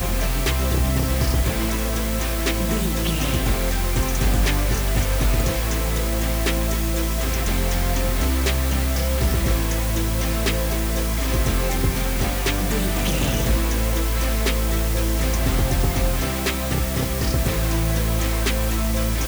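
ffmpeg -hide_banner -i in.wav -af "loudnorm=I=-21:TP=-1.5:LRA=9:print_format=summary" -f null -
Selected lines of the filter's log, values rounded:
Input Integrated:    -22.1 LUFS
Input True Peak:      -9.2 dBTP
Input LRA:             0.6 LU
Input Threshold:     -32.1 LUFS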